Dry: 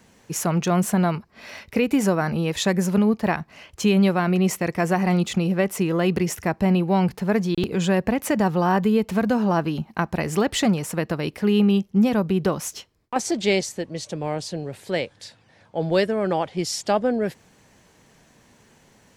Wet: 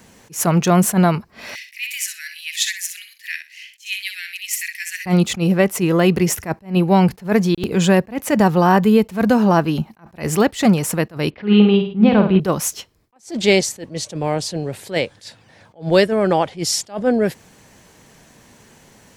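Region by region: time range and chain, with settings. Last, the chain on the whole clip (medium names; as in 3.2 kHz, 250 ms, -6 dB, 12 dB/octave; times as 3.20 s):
1.55–5.06 s: steep high-pass 1.8 kHz 72 dB/octave + feedback delay 62 ms, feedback 18%, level -8.5 dB
11.30–12.40 s: steep low-pass 3.9 kHz + flutter echo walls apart 9 m, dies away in 0.49 s
whole clip: treble shelf 9.1 kHz +6 dB; attacks held to a fixed rise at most 230 dB/s; trim +6.5 dB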